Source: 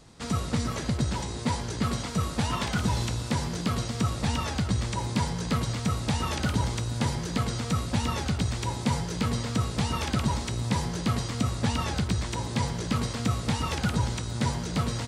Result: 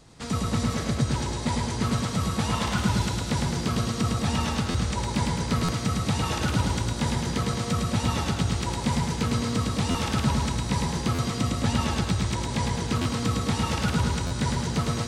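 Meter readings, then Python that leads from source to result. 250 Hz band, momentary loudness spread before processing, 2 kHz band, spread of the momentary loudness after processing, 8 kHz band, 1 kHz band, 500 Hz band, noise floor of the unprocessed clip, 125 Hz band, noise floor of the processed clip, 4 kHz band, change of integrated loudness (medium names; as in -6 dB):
+3.0 dB, 2 LU, +2.5 dB, 2 LU, +2.5 dB, +2.5 dB, +3.0 dB, -35 dBFS, +2.0 dB, -32 dBFS, +2.5 dB, +2.5 dB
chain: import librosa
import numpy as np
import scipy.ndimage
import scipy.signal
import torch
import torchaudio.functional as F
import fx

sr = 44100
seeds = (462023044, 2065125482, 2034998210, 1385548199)

y = fx.echo_feedback(x, sr, ms=106, feedback_pct=60, wet_db=-3.0)
y = fx.buffer_glitch(y, sr, at_s=(4.7, 5.64, 9.9, 11.14, 13.01, 14.26), block=512, repeats=3)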